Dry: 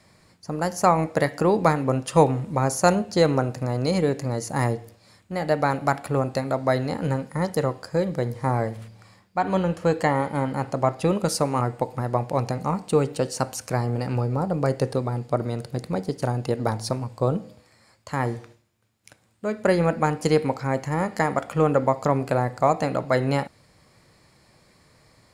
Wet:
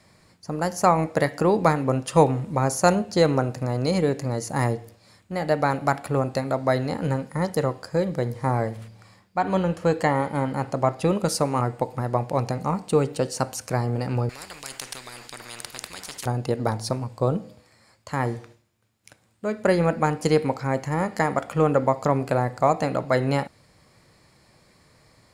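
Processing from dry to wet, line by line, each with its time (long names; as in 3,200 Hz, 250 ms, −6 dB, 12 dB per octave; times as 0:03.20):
0:14.29–0:16.26: every bin compressed towards the loudest bin 10 to 1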